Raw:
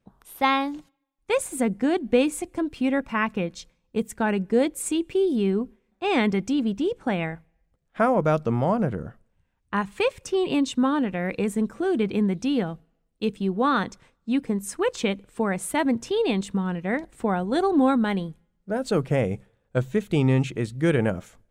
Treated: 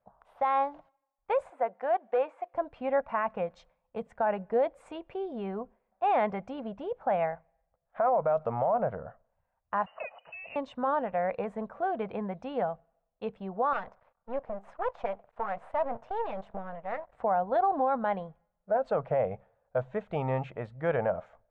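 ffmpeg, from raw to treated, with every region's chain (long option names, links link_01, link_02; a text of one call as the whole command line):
ffmpeg -i in.wav -filter_complex "[0:a]asettb=1/sr,asplit=3[link_01][link_02][link_03];[link_01]atrim=end=1.504[link_04];[link_02]atrim=start=1.5:end=2.54,asetpts=PTS-STARTPTS,afade=type=in:duration=0.004:curve=qsin,afade=type=out:start_time=1.036:duration=0.004:curve=qsin,highpass=520,acrossover=split=2700[link_05][link_06];[link_06]acompressor=threshold=-47dB:ratio=4:attack=1:release=60[link_07];[link_05][link_07]amix=inputs=2:normalize=0,asoftclip=type=hard:threshold=-17dB[link_08];[link_03]atrim=start=2.536[link_09];[link_04][link_08]acrossfade=duration=0.004:curve1=hsin:curve2=qsin[link_10];[link_10][link_09]acrossfade=duration=0.004:curve1=qsin:curve2=hsin,asettb=1/sr,asplit=3[link_11][link_12][link_13];[link_11]atrim=end=3.564[link_14];[link_12]atrim=start=3.56:end=4.07,asetpts=PTS-STARTPTS,afade=type=in:duration=0.004:curve=qsin,afade=type=out:start_time=0.506:duration=0.004:curve=qsin,highshelf=frequency=5300:gain=9,acrossover=split=310|3000[link_15][link_16][link_17];[link_16]acompressor=threshold=-28dB:ratio=2:attack=3.2:release=140:knee=2.83:detection=peak[link_18];[link_15][link_18][link_17]amix=inputs=3:normalize=0[link_19];[link_13]atrim=start=4.066[link_20];[link_14][link_19]acrossfade=duration=0.004:curve1=hsin:curve2=qsin[link_21];[link_21][link_20]acrossfade=duration=0.004:curve1=qsin:curve2=hsin,asettb=1/sr,asplit=3[link_22][link_23][link_24];[link_22]atrim=end=9.864[link_25];[link_23]atrim=start=9.86:end=10.56,asetpts=PTS-STARTPTS,afade=type=in:duration=0.004:curve=qsin,afade=type=out:start_time=0.696:duration=0.004:curve=qsin,acompressor=threshold=-29dB:ratio=4:attack=3.2:release=140:knee=1:detection=peak,lowpass=frequency=2600:width_type=q:width=0.5098,lowpass=frequency=2600:width_type=q:width=0.6013,lowpass=frequency=2600:width_type=q:width=0.9,lowpass=frequency=2600:width_type=q:width=2.563,afreqshift=-3000[link_26];[link_24]atrim=start=10.556[link_27];[link_25][link_26]acrossfade=duration=0.004:curve1=hsin:curve2=qsin[link_28];[link_28][link_27]acrossfade=duration=0.004:curve1=qsin:curve2=hsin,asettb=1/sr,asplit=3[link_29][link_30][link_31];[link_29]atrim=end=13.734[link_32];[link_30]atrim=start=13.73:end=17.13,asetpts=PTS-STARTPTS,afade=type=in:duration=0.004:curve=qsin,afade=type=out:start_time=3.396:duration=0.004:curve=qsin,highshelf=frequency=4300:gain=-5,aeval=exprs='max(val(0),0)':channel_layout=same[link_33];[link_31]atrim=start=17.126[link_34];[link_32][link_33]acrossfade=duration=0.004:curve1=hsin:curve2=qsin[link_35];[link_35][link_34]acrossfade=duration=0.004:curve1=qsin:curve2=hsin,lowpass=1200,lowshelf=frequency=460:width_type=q:width=3:gain=-11,alimiter=limit=-19dB:level=0:latency=1:release=26" out.wav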